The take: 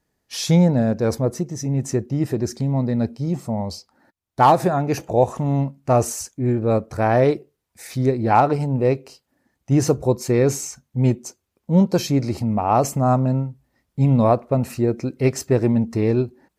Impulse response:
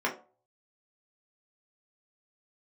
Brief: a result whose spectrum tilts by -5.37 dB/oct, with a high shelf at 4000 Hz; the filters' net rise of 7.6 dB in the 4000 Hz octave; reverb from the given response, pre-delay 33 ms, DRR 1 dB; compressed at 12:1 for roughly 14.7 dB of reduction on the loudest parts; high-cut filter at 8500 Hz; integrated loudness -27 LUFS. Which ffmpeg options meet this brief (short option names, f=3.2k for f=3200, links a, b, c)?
-filter_complex "[0:a]lowpass=8.5k,highshelf=f=4k:g=5.5,equalizer=f=4k:t=o:g=6.5,acompressor=threshold=-25dB:ratio=12,asplit=2[a][b];[1:a]atrim=start_sample=2205,adelay=33[c];[b][c]afir=irnorm=-1:irlink=0,volume=-11dB[d];[a][d]amix=inputs=2:normalize=0,volume=1dB"